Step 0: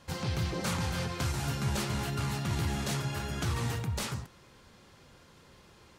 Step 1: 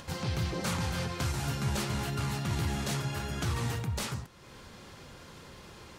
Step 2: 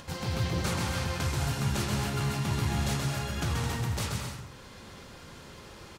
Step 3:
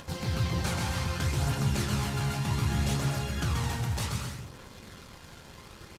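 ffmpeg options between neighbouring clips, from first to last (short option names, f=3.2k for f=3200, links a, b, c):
-af "acompressor=mode=upward:threshold=-40dB:ratio=2.5"
-af "aecho=1:1:130|214.5|269.4|305.1|328.3:0.631|0.398|0.251|0.158|0.1"
-filter_complex "[0:a]aphaser=in_gain=1:out_gain=1:delay=1.4:decay=0.27:speed=0.65:type=triangular,asplit=2[a][b];[b]acrusher=bits=6:mix=0:aa=0.000001,volume=-7dB[c];[a][c]amix=inputs=2:normalize=0,aresample=32000,aresample=44100,volume=-4dB"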